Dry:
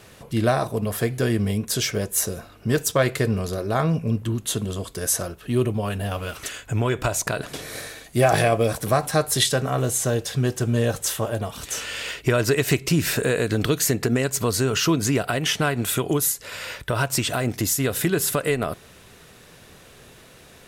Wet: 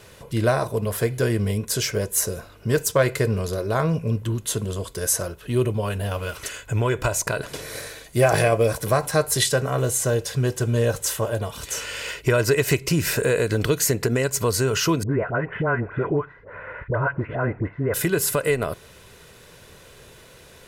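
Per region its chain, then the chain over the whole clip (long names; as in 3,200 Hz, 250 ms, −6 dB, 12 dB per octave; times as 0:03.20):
0:15.03–0:17.94: Butterworth low-pass 1,900 Hz + all-pass dispersion highs, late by 76 ms, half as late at 890 Hz
whole clip: comb filter 2 ms, depth 35%; dynamic equaliser 3,500 Hz, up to −5 dB, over −43 dBFS, Q 3.6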